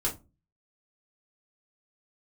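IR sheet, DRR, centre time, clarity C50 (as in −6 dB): −4.5 dB, 17 ms, 13.0 dB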